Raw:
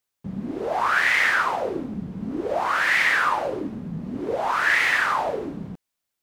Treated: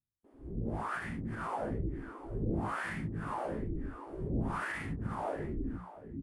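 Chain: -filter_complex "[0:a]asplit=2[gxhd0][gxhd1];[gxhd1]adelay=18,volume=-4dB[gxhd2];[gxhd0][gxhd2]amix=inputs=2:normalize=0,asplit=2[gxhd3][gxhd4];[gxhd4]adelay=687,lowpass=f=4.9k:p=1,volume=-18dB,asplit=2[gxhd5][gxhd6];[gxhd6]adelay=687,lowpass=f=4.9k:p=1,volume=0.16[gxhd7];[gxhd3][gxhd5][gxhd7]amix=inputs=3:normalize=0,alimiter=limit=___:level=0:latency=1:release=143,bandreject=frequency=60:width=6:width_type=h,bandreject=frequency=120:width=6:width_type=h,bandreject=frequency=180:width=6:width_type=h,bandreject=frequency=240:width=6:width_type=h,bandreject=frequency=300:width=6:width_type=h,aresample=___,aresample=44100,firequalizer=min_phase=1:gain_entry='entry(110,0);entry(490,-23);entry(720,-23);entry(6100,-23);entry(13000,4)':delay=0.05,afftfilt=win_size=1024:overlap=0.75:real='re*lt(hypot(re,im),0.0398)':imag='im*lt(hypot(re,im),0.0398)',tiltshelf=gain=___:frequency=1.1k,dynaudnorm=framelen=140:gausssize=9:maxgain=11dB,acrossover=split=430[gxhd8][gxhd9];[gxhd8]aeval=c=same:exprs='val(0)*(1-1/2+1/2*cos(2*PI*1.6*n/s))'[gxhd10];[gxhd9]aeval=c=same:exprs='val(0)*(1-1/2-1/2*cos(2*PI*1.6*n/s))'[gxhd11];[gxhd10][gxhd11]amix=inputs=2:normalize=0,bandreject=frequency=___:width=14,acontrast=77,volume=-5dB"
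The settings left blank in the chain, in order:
-15dB, 22050, 7.5, 3.9k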